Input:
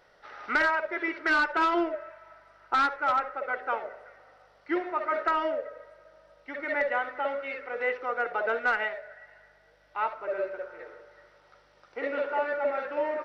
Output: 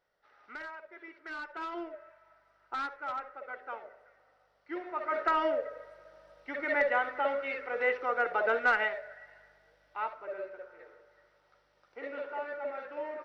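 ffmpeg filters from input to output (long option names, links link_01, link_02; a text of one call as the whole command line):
ffmpeg -i in.wav -af "afade=type=in:start_time=1.22:duration=0.86:silence=0.421697,afade=type=in:start_time=4.71:duration=0.78:silence=0.281838,afade=type=out:start_time=8.87:duration=1.56:silence=0.354813" out.wav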